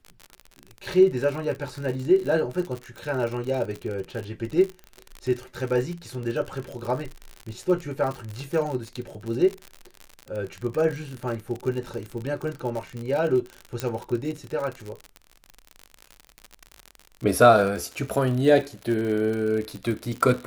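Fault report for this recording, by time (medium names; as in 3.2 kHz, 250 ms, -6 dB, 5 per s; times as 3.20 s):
crackle 60 per s -29 dBFS
13.80 s: pop -11 dBFS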